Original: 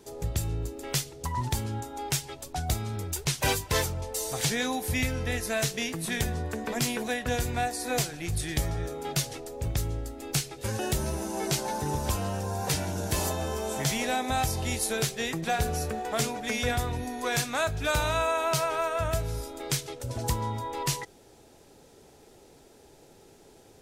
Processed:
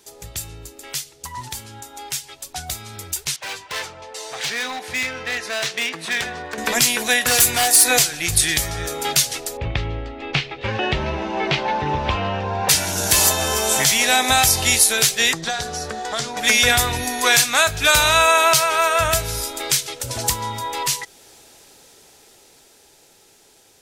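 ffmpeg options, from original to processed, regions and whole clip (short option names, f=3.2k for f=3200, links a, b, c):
-filter_complex "[0:a]asettb=1/sr,asplit=3[a][b][c];[a]atrim=end=3.364[d];[b]atrim=start=3.36:end=6.58,asetpts=PTS-STARTPTS,afade=t=in:d=0.004:c=qsin,afade=t=out:st=3.216:d=0.004:c=qsin,highpass=f=500:p=1,adynamicsmooth=sensitivity=0.5:basefreq=2.9k,asoftclip=type=hard:threshold=-32.5dB[e];[c]atrim=start=6.576[f];[d][e]acrossfade=d=0.004:c1=hsin:c2=qsin[g];[g][f]acrossfade=d=0.004:c1=qsin:c2=hsin,asettb=1/sr,asplit=3[h][i][j];[h]atrim=end=7.214[k];[i]atrim=start=7.21:end=7.84,asetpts=PTS-STARTPTS,afade=t=in:d=0.004:c=qsin,afade=t=out:st=0.626:d=0.004:c=qsin,highpass=f=130:p=1,equalizer=f=11k:w=0.85:g=8,aeval=exprs='0.0596*(abs(mod(val(0)/0.0596+3,4)-2)-1)':c=same[l];[j]atrim=start=7.836[m];[k][l]acrossfade=d=0.004:c1=hsin:c2=qsin[n];[n][m]acrossfade=d=0.004:c1=qsin:c2=hsin,asettb=1/sr,asplit=3[o][p][q];[o]atrim=end=9.574[r];[p]atrim=start=9.57:end=12.69,asetpts=PTS-STARTPTS,afade=t=in:d=0.004:c=qsin,afade=t=out:st=3.116:d=0.004:c=qsin,lowpass=f=2.9k:w=0.5412,lowpass=f=2.9k:w=1.3066,equalizer=f=1.5k:w=3.5:g=-5.5[s];[q]atrim=start=12.686[t];[r][s]acrossfade=d=0.004:c1=hsin:c2=qsin[u];[u][t]acrossfade=d=0.004:c1=qsin:c2=hsin,asettb=1/sr,asplit=3[v][w][x];[v]atrim=end=15.334[y];[w]atrim=start=15.33:end=16.37,asetpts=PTS-STARTPTS,afade=t=in:d=0.004:c=qsin,afade=t=out:st=1.036:d=0.004:c=qsin,equalizer=f=2.5k:w=2.5:g=-10.5,acrossover=split=99|3000[z][aa][ab];[z]acompressor=threshold=-49dB:ratio=4[ac];[aa]acompressor=threshold=-36dB:ratio=4[ad];[ab]acompressor=threshold=-43dB:ratio=4[ae];[ac][ad][ae]amix=inputs=3:normalize=0,lowpass=5.2k[af];[x]atrim=start=16.366[ag];[y][af]acrossfade=d=0.004:c1=hsin:c2=qsin[ah];[ah][ag]acrossfade=d=0.004:c1=qsin:c2=hsin,tiltshelf=f=970:g=-8,alimiter=limit=-15dB:level=0:latency=1:release=414,dynaudnorm=f=820:g=11:m=14.5dB"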